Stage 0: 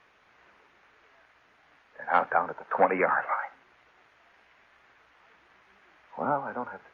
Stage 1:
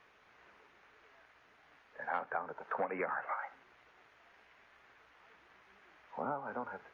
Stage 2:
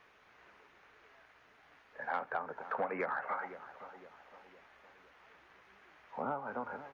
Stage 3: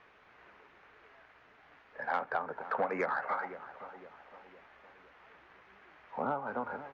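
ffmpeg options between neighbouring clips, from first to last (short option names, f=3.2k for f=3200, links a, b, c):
-af "equalizer=f=430:t=o:w=0.2:g=3,acompressor=threshold=-33dB:ratio=3,volume=-3dB"
-filter_complex "[0:a]asoftclip=type=tanh:threshold=-22dB,asplit=2[a][b];[b]adelay=511,lowpass=f=1.2k:p=1,volume=-12dB,asplit=2[c][d];[d]adelay=511,lowpass=f=1.2k:p=1,volume=0.52,asplit=2[e][f];[f]adelay=511,lowpass=f=1.2k:p=1,volume=0.52,asplit=2[g][h];[h]adelay=511,lowpass=f=1.2k:p=1,volume=0.52,asplit=2[i][j];[j]adelay=511,lowpass=f=1.2k:p=1,volume=0.52[k];[a][c][e][g][i][k]amix=inputs=6:normalize=0,volume=1dB"
-af "adynamicsmooth=sensitivity=6:basefreq=4.7k,volume=3.5dB"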